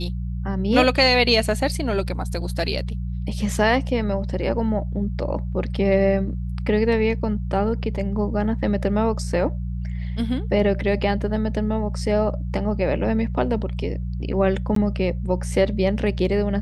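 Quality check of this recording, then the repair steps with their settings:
hum 60 Hz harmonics 3 -27 dBFS
14.75–14.76 s: dropout 13 ms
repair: de-hum 60 Hz, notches 3; interpolate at 14.75 s, 13 ms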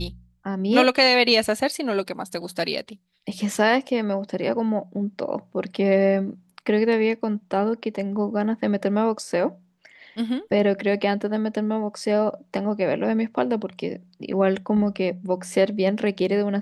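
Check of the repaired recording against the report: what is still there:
nothing left

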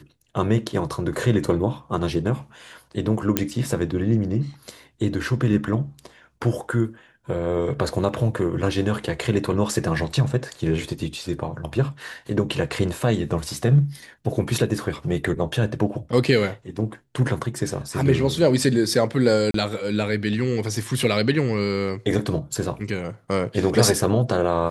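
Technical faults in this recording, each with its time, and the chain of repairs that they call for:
3.37 s: pop -3 dBFS
19.51–19.54 s: dropout 33 ms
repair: de-click; interpolate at 19.51 s, 33 ms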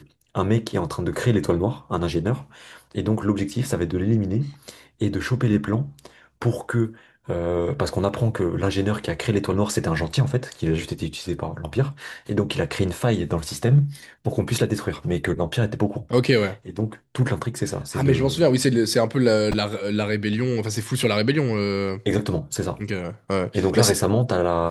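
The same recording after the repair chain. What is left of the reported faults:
nothing left

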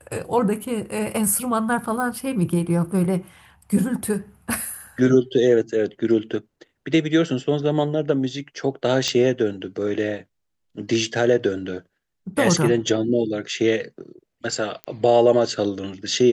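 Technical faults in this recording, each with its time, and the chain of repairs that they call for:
2.00 s: pop -16 dBFS
9.08 s: pop -10 dBFS
14.84 s: pop -17 dBFS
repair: de-click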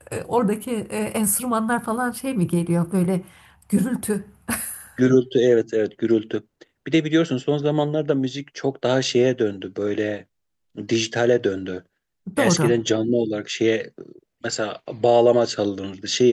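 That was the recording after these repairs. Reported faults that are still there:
nothing left

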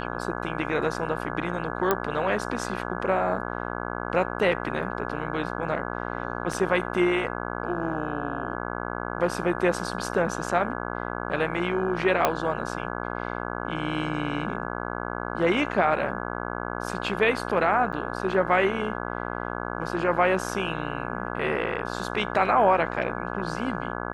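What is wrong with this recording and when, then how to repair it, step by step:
buzz 60 Hz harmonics 28 -32 dBFS
1.91 s: pop -8 dBFS
6.53 s: dropout 3.2 ms
12.25 s: pop -6 dBFS
17.92–17.93 s: dropout 7.8 ms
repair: de-click; de-hum 60 Hz, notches 28; interpolate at 6.53 s, 3.2 ms; interpolate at 17.92 s, 7.8 ms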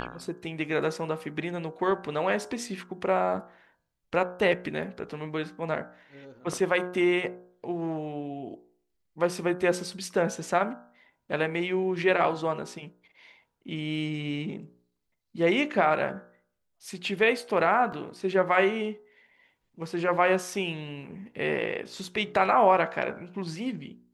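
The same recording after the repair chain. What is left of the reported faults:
nothing left

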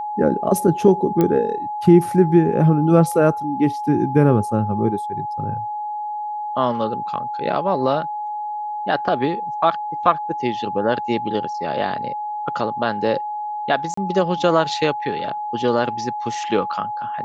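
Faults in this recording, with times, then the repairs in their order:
whine 840 Hz -24 dBFS
1.21 s: pop -7 dBFS
13.94–13.97 s: dropout 34 ms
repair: de-click; band-stop 840 Hz, Q 30; interpolate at 13.94 s, 34 ms

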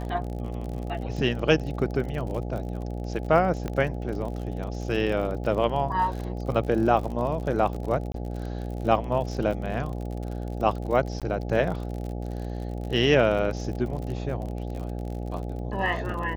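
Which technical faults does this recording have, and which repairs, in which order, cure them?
buzz 60 Hz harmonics 14 -32 dBFS
crackle 47 per s -33 dBFS
3.68 s: pop -18 dBFS
8.12–8.14 s: dropout 23 ms
11.20–11.22 s: dropout 17 ms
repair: de-click; de-hum 60 Hz, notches 14; interpolate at 8.12 s, 23 ms; interpolate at 11.20 s, 17 ms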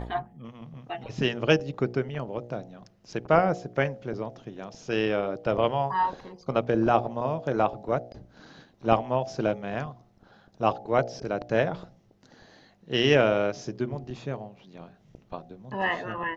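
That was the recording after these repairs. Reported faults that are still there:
nothing left

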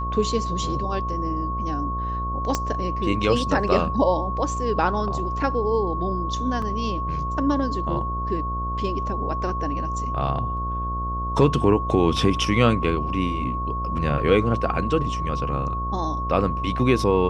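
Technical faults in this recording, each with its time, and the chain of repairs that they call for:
buzz 60 Hz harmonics 12 -29 dBFS
whine 1.1 kHz -27 dBFS
2.55 s: pop -8 dBFS
6.62 s: dropout 2.9 ms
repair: de-click; de-hum 60 Hz, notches 12; band-stop 1.1 kHz, Q 30; interpolate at 6.62 s, 2.9 ms

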